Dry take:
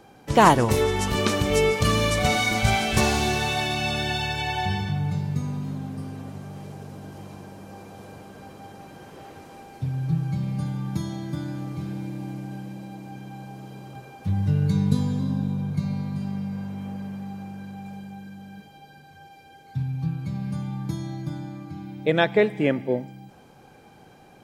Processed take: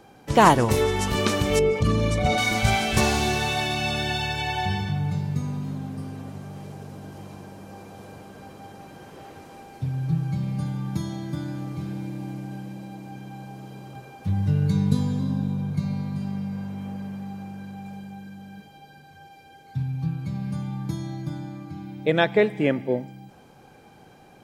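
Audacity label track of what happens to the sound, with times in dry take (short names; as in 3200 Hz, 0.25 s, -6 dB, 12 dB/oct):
1.590000	2.380000	formant sharpening exponent 1.5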